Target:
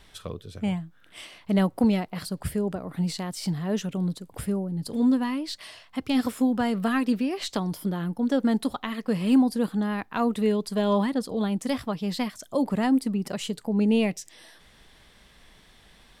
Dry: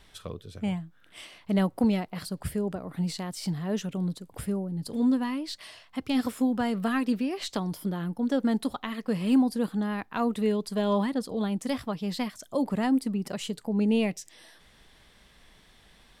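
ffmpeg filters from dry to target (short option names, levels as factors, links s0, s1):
-af "volume=1.33"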